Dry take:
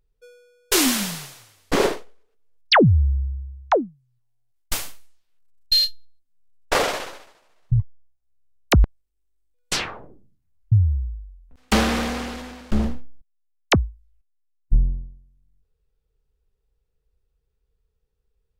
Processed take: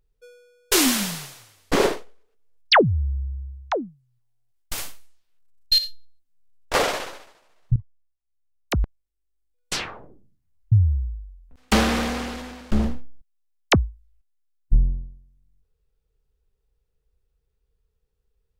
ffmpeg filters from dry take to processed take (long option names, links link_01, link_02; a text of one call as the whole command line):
ffmpeg -i in.wav -filter_complex "[0:a]asettb=1/sr,asplit=3[link_01][link_02][link_03];[link_01]atrim=end=2.814[link_04];[link_02]atrim=start=2.81:end=4.78,asetpts=PTS-STARTPTS,afade=type=in:duration=0.004:curve=qsin,afade=type=out:start_time=1.966:duration=0.004:curve=qsin,acompressor=threshold=-31dB:ratio=1.5:attack=3.2:release=140:knee=1:detection=peak[link_05];[link_03]atrim=start=4.776[link_06];[link_04][link_05]acrossfade=duration=0.004:curve1=hsin:curve2=qsin[link_07];[link_07][link_06]acrossfade=duration=0.004:curve1=qsin:curve2=hsin,asettb=1/sr,asplit=3[link_08][link_09][link_10];[link_08]atrim=end=5.784[link_11];[link_09]atrim=start=5.78:end=6.74,asetpts=PTS-STARTPTS,afade=type=in:duration=0.004:curve=qsin,afade=type=out:start_time=0.956:duration=0.004:curve=qsin,acompressor=threshold=-26dB:ratio=10:attack=3.2:release=140:knee=1:detection=peak[link_12];[link_10]atrim=start=6.736[link_13];[link_11][link_12]acrossfade=duration=0.004:curve1=hsin:curve2=qsin[link_14];[link_14][link_13]acrossfade=duration=0.004:curve1=qsin:curve2=hsin,asplit=2[link_15][link_16];[link_15]atrim=end=7.76,asetpts=PTS-STARTPTS,afade=type=out:start_time=7.756:duration=0.004:curve=hsin:silence=0.133352[link_17];[link_16]atrim=start=7.76,asetpts=PTS-STARTPTS,afade=type=in:duration=3.09:silence=0.133352[link_18];[link_17][link_18]concat=n=2:v=0:a=1" out.wav